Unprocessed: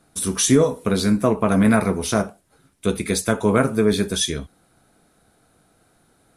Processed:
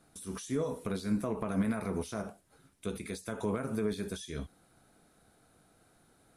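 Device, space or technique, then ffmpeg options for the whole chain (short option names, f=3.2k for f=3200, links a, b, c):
de-esser from a sidechain: -filter_complex "[0:a]asplit=2[a][b];[b]highpass=f=4.4k:p=1,apad=whole_len=280715[c];[a][c]sidechaincompress=threshold=-43dB:ratio=4:attack=3.7:release=80,volume=-5.5dB"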